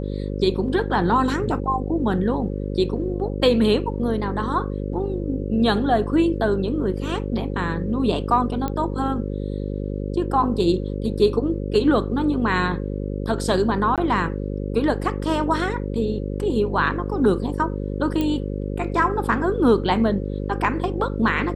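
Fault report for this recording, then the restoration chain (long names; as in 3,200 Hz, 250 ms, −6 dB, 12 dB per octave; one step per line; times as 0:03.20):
mains buzz 50 Hz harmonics 11 −27 dBFS
0:08.68: click −13 dBFS
0:13.96–0:13.98: drop-out 17 ms
0:18.21: click −12 dBFS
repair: click removal
hum removal 50 Hz, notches 11
repair the gap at 0:13.96, 17 ms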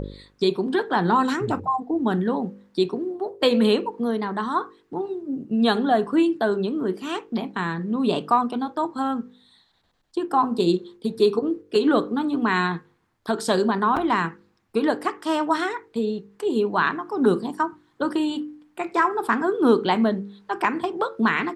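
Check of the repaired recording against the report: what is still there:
none of them is left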